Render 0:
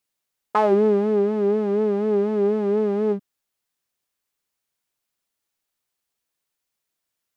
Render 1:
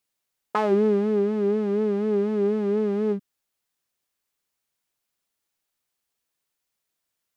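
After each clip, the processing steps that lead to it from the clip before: dynamic EQ 710 Hz, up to -7 dB, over -34 dBFS, Q 1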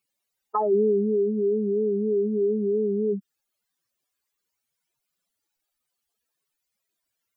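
spectral contrast raised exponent 3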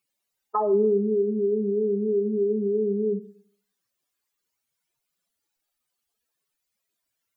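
Schroeder reverb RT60 0.57 s, combs from 25 ms, DRR 12 dB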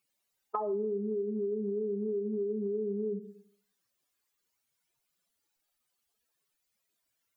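compressor 6:1, threshold -31 dBFS, peak gain reduction 12.5 dB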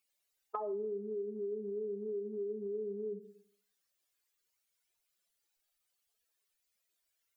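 ten-band EQ 125 Hz -11 dB, 250 Hz -8 dB, 1000 Hz -5 dB; gain -1 dB

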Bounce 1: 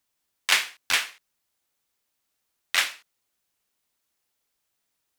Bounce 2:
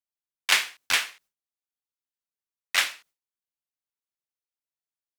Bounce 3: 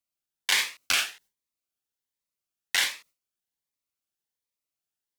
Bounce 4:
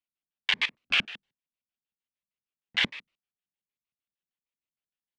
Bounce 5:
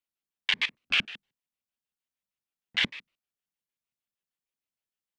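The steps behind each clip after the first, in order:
gate with hold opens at -49 dBFS
in parallel at +2 dB: negative-ratio compressor -26 dBFS, ratio -1; on the sum: cascading phaser rising 1.3 Hz; gain -4.5 dB
level quantiser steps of 17 dB; LFO low-pass square 6.5 Hz 210–2900 Hz; gain +7 dB
dynamic EQ 760 Hz, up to -4 dB, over -44 dBFS, Q 0.79

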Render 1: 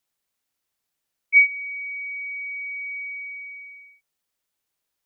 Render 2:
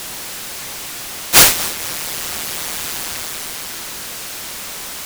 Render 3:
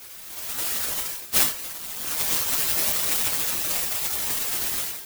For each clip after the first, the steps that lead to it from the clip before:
flutter echo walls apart 7.8 m, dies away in 0.68 s; whine 2100 Hz -31 dBFS; noise-modulated delay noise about 3500 Hz, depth 0.2 ms; gain +5 dB
spectral gate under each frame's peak -10 dB weak; AGC gain up to 16 dB; gain -5 dB

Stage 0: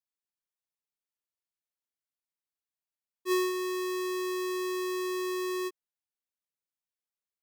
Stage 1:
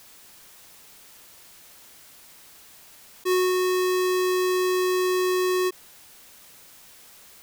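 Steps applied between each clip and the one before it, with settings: fast leveller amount 70%; gain +4.5 dB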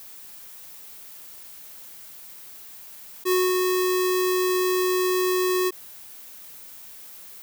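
high shelf 12000 Hz +11 dB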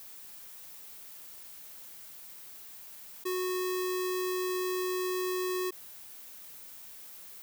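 limiter -19 dBFS, peak gain reduction 7 dB; gain -5 dB

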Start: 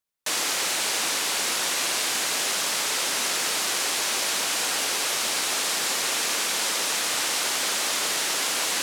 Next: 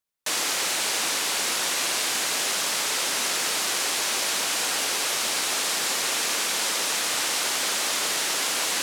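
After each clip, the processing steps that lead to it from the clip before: nothing audible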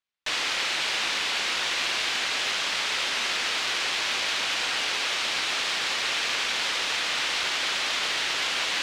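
Chebyshev low-pass 3100 Hz, order 2; tilt shelf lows -5 dB, about 1300 Hz; added harmonics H 6 -27 dB, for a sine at -14 dBFS

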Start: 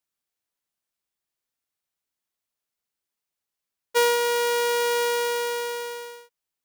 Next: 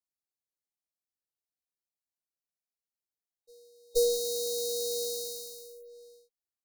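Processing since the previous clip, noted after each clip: reverse echo 0.472 s -21.5 dB; added harmonics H 2 -7 dB, 7 -14 dB, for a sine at -12.5 dBFS; FFT band-reject 860–3800 Hz; gain -4 dB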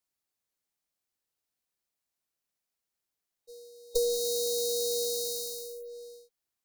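compressor 5:1, threshold -33 dBFS, peak gain reduction 10.5 dB; gain +7 dB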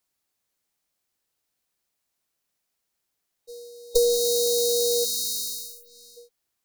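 spectral gain 5.05–6.17, 330–2200 Hz -23 dB; gain +7.5 dB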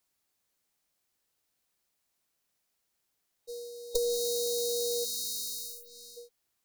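compressor 3:1, threshold -30 dBFS, peak gain reduction 11 dB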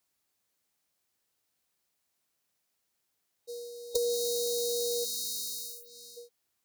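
HPF 50 Hz

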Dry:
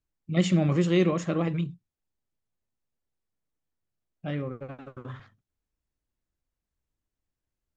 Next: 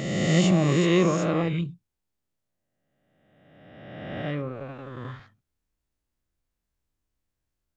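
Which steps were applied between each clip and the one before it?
spectral swells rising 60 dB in 1.75 s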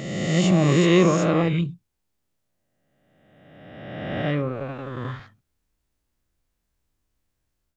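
AGC gain up to 8 dB; gain -2 dB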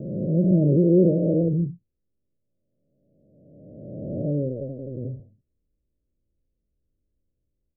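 steep low-pass 600 Hz 72 dB/oct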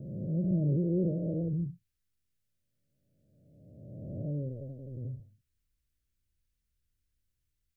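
EQ curve 110 Hz 0 dB, 180 Hz -6 dB, 320 Hz -10 dB, 520 Hz -11 dB, 780 Hz -7 dB, 1500 Hz +11 dB; gain -4 dB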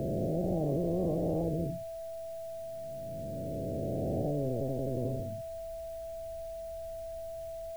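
whine 660 Hz -52 dBFS; spectral compressor 4:1

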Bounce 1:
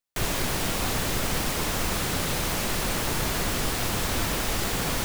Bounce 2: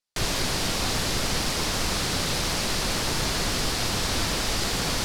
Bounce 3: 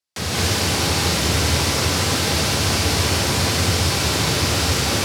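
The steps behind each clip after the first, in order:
LPF 11000 Hz 12 dB/oct; bell 4700 Hz +7 dB 0.84 oct
frequency shift +67 Hz; non-linear reverb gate 0.24 s rising, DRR -5.5 dB

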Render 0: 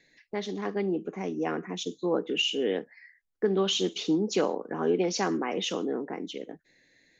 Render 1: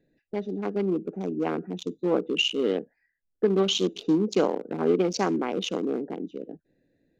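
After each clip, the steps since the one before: Wiener smoothing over 41 samples; bell 1800 Hz -7 dB 0.21 oct; gain +4 dB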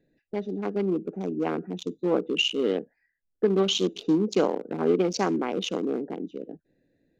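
nothing audible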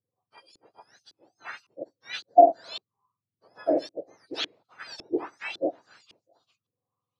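spectrum mirrored in octaves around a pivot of 1400 Hz; LFO low-pass saw up 1.8 Hz 340–3400 Hz; upward expander 1.5:1, over -42 dBFS; gain +5 dB

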